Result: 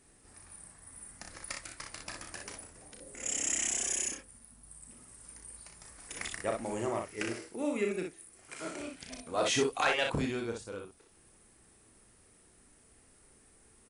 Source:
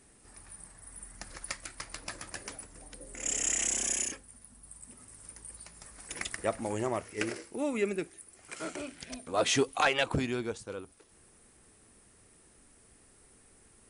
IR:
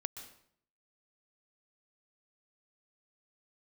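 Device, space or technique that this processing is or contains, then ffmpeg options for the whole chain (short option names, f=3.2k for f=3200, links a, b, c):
slapback doubling: -filter_complex "[0:a]asplit=3[a][b][c];[b]adelay=34,volume=-6dB[d];[c]adelay=61,volume=-5dB[e];[a][d][e]amix=inputs=3:normalize=0,volume=-3.5dB"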